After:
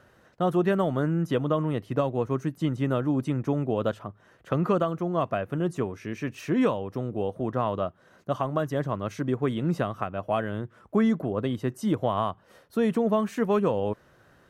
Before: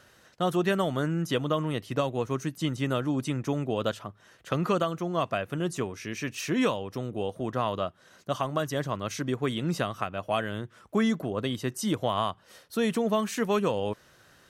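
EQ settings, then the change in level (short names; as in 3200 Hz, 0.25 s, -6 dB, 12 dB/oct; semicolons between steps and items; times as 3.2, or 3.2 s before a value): high shelf 3100 Hz -10 dB; bell 4500 Hz -6 dB 2.6 oct; +3.0 dB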